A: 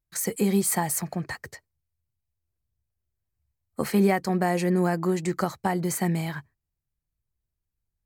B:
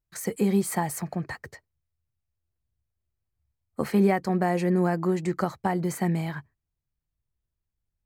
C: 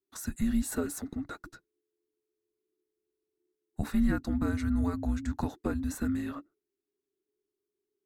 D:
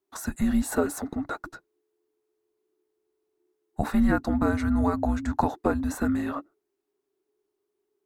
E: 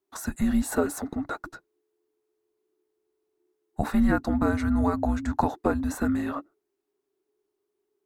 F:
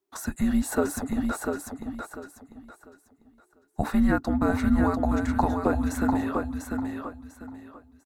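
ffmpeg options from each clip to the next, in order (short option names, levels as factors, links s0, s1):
-af "highshelf=f=3300:g=-8.5"
-af "afreqshift=-430,volume=0.562"
-af "equalizer=f=780:w=0.75:g=12,volume=1.33"
-af anull
-af "aecho=1:1:696|1392|2088|2784:0.562|0.152|0.041|0.0111"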